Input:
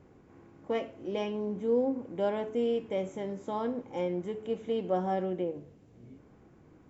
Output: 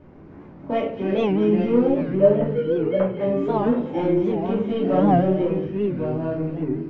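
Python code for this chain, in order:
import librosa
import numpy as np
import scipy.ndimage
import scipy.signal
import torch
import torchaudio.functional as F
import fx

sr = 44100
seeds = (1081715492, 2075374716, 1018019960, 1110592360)

p1 = fx.sine_speech(x, sr, at=(2.0, 3.21))
p2 = np.clip(10.0 ** (29.0 / 20.0) * p1, -1.0, 1.0) / 10.0 ** (29.0 / 20.0)
p3 = p1 + (p2 * librosa.db_to_amplitude(-8.0))
p4 = fx.echo_pitch(p3, sr, ms=162, semitones=-3, count=3, db_per_echo=-6.0)
p5 = fx.air_absorb(p4, sr, metres=230.0)
p6 = p5 + fx.echo_wet_highpass(p5, sr, ms=223, feedback_pct=62, hz=2600.0, wet_db=-7.0, dry=0)
p7 = fx.room_shoebox(p6, sr, seeds[0], volume_m3=310.0, walls='furnished', distance_m=2.7)
p8 = fx.record_warp(p7, sr, rpm=78.0, depth_cents=160.0)
y = p8 * librosa.db_to_amplitude(3.5)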